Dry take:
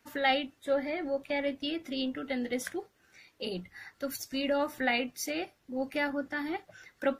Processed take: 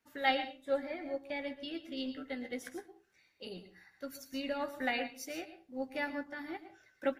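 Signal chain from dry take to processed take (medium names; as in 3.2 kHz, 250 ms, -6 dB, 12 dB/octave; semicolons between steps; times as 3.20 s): doubling 15 ms -11 dB; on a send at -8 dB: reverberation RT60 0.35 s, pre-delay 106 ms; on the sum: upward expansion 1.5:1, over -42 dBFS; trim -3 dB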